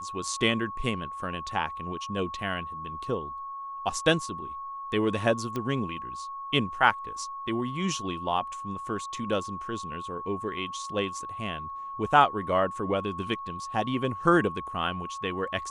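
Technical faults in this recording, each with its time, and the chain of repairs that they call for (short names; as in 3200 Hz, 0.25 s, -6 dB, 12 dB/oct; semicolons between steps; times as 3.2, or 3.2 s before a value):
tone 1100 Hz -35 dBFS
5.56 pop -18 dBFS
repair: de-click; notch 1100 Hz, Q 30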